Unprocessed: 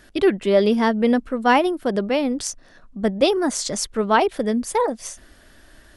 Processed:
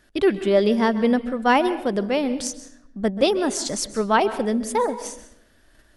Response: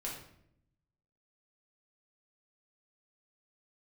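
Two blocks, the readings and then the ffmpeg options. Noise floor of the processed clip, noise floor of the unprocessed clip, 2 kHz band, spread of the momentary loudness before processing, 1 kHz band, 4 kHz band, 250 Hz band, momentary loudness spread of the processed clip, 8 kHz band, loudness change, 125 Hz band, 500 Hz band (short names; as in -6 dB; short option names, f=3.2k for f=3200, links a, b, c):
-58 dBFS, -51 dBFS, -1.5 dB, 9 LU, -1.5 dB, -1.5 dB, -1.0 dB, 12 LU, -1.5 dB, -1.0 dB, -1.0 dB, -1.0 dB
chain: -filter_complex "[0:a]agate=range=-7dB:threshold=-45dB:ratio=16:detection=peak,asplit=2[a][b];[1:a]atrim=start_sample=2205,adelay=130[c];[b][c]afir=irnorm=-1:irlink=0,volume=-14dB[d];[a][d]amix=inputs=2:normalize=0,volume=-1.5dB"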